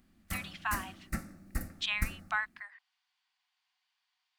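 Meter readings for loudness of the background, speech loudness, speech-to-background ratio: -41.5 LUFS, -36.5 LUFS, 5.0 dB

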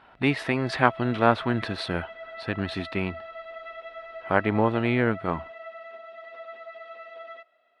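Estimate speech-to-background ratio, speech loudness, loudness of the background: 15.0 dB, -26.0 LUFS, -41.0 LUFS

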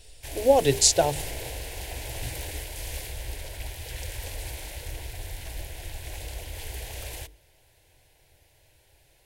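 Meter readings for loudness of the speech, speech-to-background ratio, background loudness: -21.0 LUFS, 15.5 dB, -36.5 LUFS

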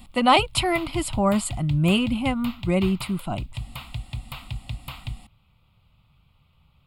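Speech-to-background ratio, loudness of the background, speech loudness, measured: 13.5 dB, -36.5 LUFS, -23.0 LUFS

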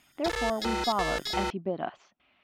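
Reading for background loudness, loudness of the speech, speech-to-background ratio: -32.0 LUFS, -32.5 LUFS, -0.5 dB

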